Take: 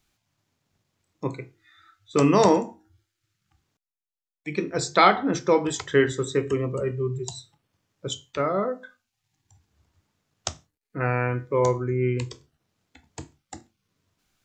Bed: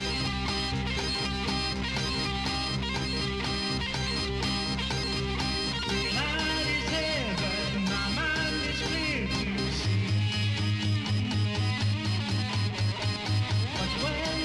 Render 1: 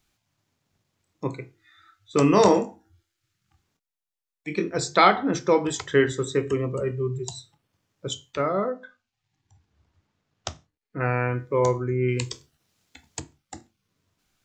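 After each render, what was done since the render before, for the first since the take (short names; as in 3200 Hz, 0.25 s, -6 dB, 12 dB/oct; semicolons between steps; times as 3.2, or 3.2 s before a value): 2.29–4.69 doubler 24 ms -7.5 dB; 8.7–11 air absorption 88 m; 12.08–13.2 high shelf 2300 Hz +10 dB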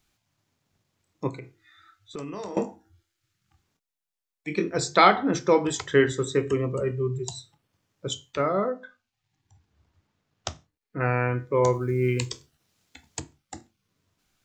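1.29–2.57 compressor, threshold -34 dBFS; 11.73–12.26 companded quantiser 8-bit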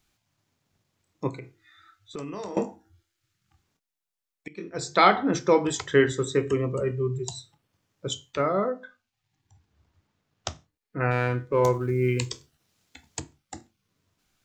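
4.48–5.14 fade in, from -22.5 dB; 11.11–11.9 running maximum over 3 samples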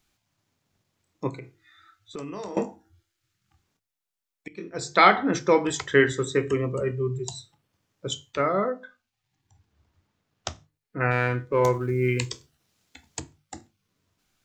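dynamic EQ 1900 Hz, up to +5 dB, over -40 dBFS, Q 1.5; notches 50/100/150 Hz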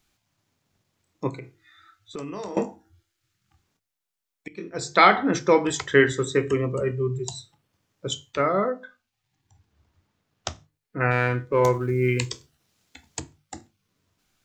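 gain +1.5 dB; limiter -3 dBFS, peak gain reduction 1.5 dB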